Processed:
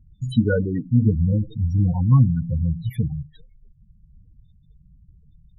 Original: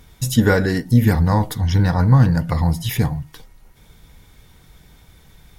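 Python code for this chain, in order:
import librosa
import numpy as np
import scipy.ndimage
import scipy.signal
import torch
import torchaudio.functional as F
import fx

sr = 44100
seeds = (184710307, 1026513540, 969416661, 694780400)

y = fx.rotary_switch(x, sr, hz=5.0, then_hz=0.85, switch_at_s=0.45)
y = fx.spec_topn(y, sr, count=8)
y = y * librosa.db_to_amplitude(-1.5)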